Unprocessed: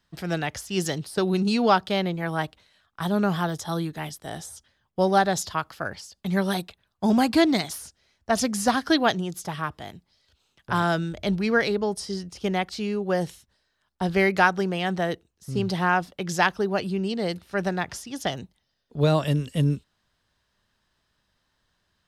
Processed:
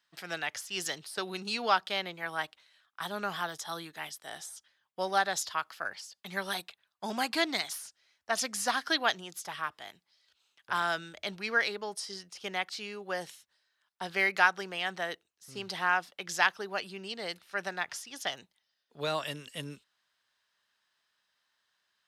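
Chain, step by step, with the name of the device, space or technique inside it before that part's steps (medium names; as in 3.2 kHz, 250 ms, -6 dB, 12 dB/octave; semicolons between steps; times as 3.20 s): filter by subtraction (in parallel: low-pass 1.8 kHz 12 dB/octave + polarity flip); on the sum: trim -4 dB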